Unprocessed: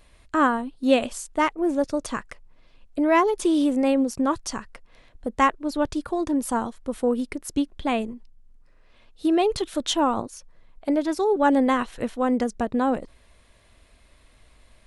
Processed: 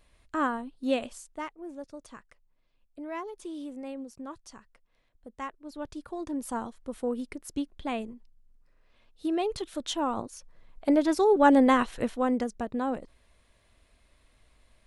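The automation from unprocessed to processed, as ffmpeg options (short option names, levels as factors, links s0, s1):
-af "volume=3.16,afade=t=out:st=0.88:d=0.67:silence=0.316228,afade=t=in:st=5.52:d=1.07:silence=0.316228,afade=t=in:st=10.02:d=0.87:silence=0.398107,afade=t=out:st=11.86:d=0.67:silence=0.421697"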